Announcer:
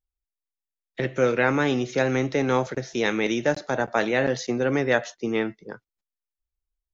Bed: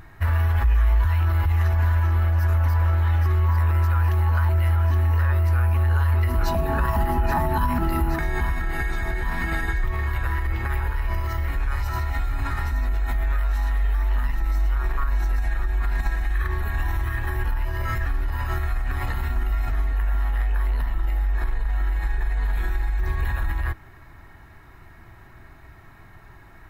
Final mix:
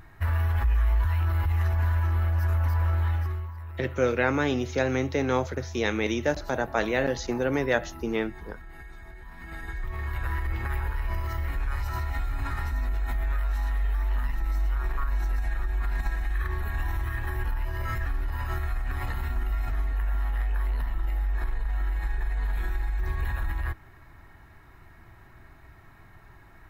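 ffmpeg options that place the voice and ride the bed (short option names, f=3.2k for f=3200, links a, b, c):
-filter_complex "[0:a]adelay=2800,volume=-3dB[a];[1:a]volume=10dB,afade=t=out:st=3.05:d=0.46:silence=0.188365,afade=t=in:st=9.37:d=0.97:silence=0.188365[b];[a][b]amix=inputs=2:normalize=0"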